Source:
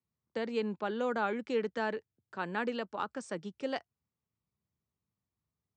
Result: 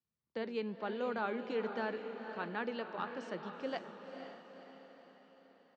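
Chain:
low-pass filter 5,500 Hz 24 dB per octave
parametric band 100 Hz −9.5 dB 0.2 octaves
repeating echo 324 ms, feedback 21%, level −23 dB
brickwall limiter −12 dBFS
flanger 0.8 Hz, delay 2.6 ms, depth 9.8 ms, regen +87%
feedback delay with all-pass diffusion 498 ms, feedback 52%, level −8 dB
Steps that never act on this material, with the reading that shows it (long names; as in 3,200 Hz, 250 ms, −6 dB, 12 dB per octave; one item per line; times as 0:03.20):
brickwall limiter −12 dBFS: peak of its input −19.0 dBFS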